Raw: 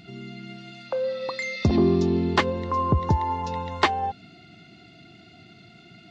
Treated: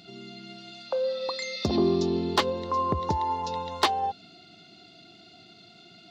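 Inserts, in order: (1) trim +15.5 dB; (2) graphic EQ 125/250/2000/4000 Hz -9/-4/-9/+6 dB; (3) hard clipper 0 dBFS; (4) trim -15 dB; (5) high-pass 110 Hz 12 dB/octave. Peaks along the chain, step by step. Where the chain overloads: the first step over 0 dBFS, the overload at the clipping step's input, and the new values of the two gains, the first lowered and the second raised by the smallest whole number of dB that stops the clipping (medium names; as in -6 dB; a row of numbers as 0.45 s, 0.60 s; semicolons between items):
+6.5 dBFS, +8.0 dBFS, 0.0 dBFS, -15.0 dBFS, -12.0 dBFS; step 1, 8.0 dB; step 1 +7.5 dB, step 4 -7 dB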